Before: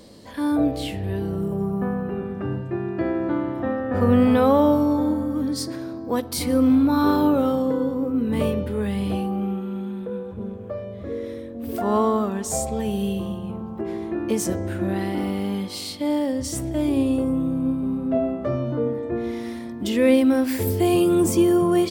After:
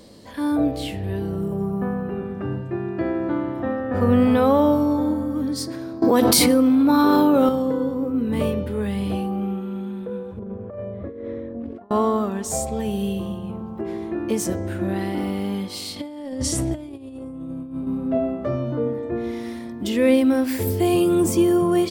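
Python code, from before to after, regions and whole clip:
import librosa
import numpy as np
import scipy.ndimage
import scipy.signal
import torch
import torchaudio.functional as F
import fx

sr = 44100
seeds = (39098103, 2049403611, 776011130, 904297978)

y = fx.chain(x, sr, fx.highpass(hz=170.0, slope=12),
    fx.env_flatten(amount_pct=100), at=(6.02, 7.49))
y = fx.chain(y, sr, fx.lowpass(hz=1700.0, slope=12),
    fx.over_compress(threshold_db=-32.0, ratio=-0.5), at=(10.39, 11.91))
y = fx.chain(y, sr, fx.lowpass(hz=12000.0, slope=24),
    fx.over_compress(threshold_db=-28.0, ratio=-0.5), at=(15.96, 17.87))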